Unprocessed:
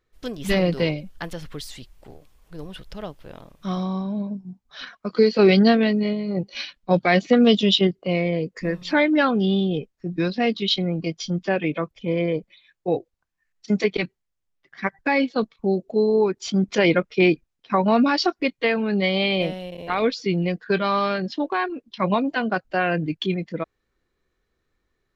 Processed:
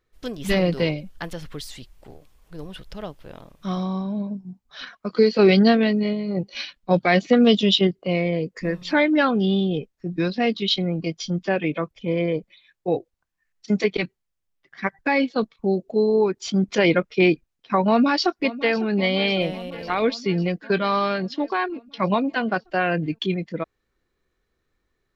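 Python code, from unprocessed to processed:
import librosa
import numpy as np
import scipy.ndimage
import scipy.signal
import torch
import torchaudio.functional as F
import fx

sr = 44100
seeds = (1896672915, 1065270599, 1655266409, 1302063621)

y = fx.echo_throw(x, sr, start_s=17.88, length_s=0.9, ms=550, feedback_pct=70, wet_db=-16.5)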